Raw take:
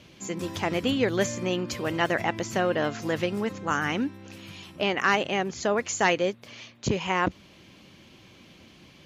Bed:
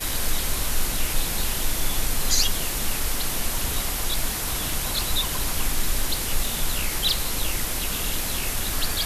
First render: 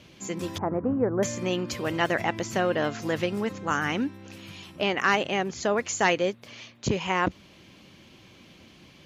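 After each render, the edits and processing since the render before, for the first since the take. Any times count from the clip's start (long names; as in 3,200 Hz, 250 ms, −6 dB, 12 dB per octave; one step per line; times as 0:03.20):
0:00.58–0:01.23: inverse Chebyshev low-pass filter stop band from 3,300 Hz, stop band 50 dB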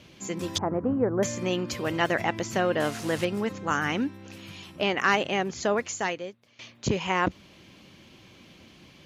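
0:00.55–0:01.19: flat-topped bell 5,500 Hz +11 dB
0:02.80–0:03.25: linear delta modulator 64 kbit/s, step −32.5 dBFS
0:05.74–0:06.59: fade out quadratic, to −17 dB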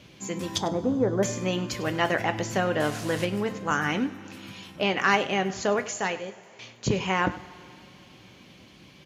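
single-tap delay 100 ms −17 dB
coupled-rooms reverb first 0.23 s, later 3.1 s, from −20 dB, DRR 8 dB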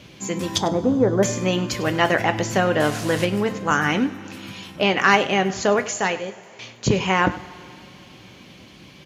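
level +6 dB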